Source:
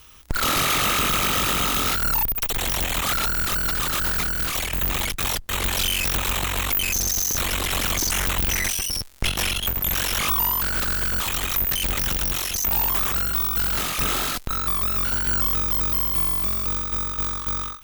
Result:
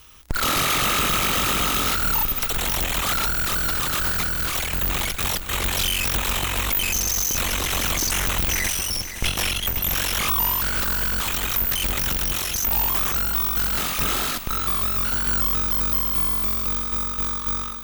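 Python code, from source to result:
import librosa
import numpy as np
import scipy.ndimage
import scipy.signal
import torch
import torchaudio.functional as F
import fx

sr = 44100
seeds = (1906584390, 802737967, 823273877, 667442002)

y = fx.echo_feedback(x, sr, ms=517, feedback_pct=54, wet_db=-11.5)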